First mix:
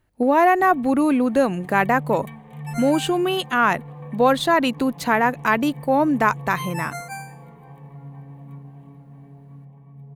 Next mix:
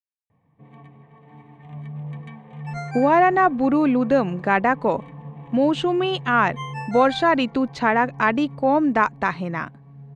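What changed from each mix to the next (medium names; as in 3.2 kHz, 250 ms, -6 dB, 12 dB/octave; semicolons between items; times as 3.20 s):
speech: entry +2.75 s; master: add Bessel low-pass 4.2 kHz, order 4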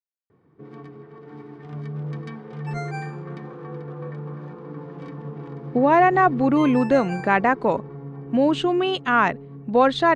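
speech: entry +2.80 s; first sound: remove static phaser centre 1.4 kHz, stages 6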